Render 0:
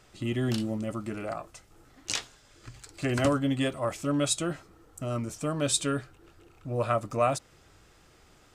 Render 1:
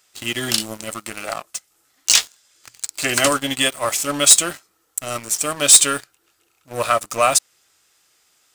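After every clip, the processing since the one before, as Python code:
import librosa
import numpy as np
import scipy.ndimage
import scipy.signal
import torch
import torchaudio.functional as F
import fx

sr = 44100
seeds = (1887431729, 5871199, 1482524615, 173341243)

y = fx.tilt_eq(x, sr, slope=4.5)
y = fx.leveller(y, sr, passes=3)
y = y * librosa.db_to_amplitude(-1.0)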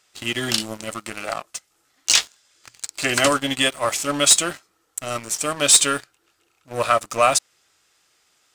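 y = fx.high_shelf(x, sr, hz=10000.0, db=-11.5)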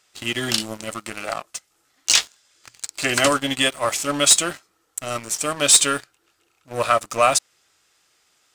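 y = x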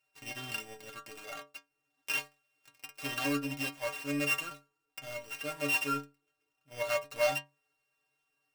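y = np.r_[np.sort(x[:len(x) // 16 * 16].reshape(-1, 16), axis=1).ravel(), x[len(x) // 16 * 16:]]
y = fx.stiff_resonator(y, sr, f0_hz=140.0, decay_s=0.29, stiffness=0.008)
y = y * librosa.db_to_amplitude(-3.5)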